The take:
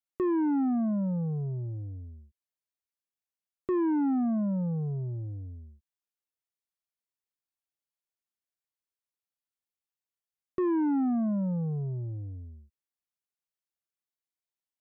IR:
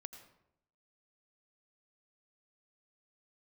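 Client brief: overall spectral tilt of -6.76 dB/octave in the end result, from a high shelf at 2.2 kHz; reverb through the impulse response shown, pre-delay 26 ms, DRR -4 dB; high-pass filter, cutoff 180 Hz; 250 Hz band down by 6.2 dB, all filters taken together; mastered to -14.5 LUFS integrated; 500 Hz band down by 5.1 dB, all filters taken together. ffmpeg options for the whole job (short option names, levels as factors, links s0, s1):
-filter_complex "[0:a]highpass=180,equalizer=f=250:t=o:g=-5,equalizer=f=500:t=o:g=-5,highshelf=f=2200:g=5.5,asplit=2[s0][s1];[1:a]atrim=start_sample=2205,adelay=26[s2];[s1][s2]afir=irnorm=-1:irlink=0,volume=2.82[s3];[s0][s3]amix=inputs=2:normalize=0,volume=5.96"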